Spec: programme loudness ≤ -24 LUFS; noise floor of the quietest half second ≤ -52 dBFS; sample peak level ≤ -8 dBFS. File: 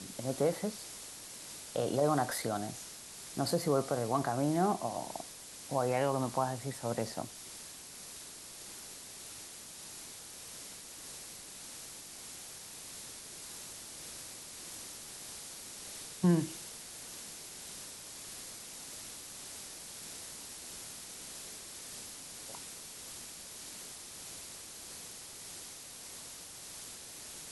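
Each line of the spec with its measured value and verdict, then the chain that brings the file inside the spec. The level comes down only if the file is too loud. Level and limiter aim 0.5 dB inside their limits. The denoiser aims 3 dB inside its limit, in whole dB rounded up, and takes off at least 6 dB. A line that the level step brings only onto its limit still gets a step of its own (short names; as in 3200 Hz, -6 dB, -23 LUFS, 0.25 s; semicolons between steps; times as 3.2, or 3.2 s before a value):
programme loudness -38.5 LUFS: OK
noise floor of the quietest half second -49 dBFS: fail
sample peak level -16.5 dBFS: OK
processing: denoiser 6 dB, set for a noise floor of -49 dBFS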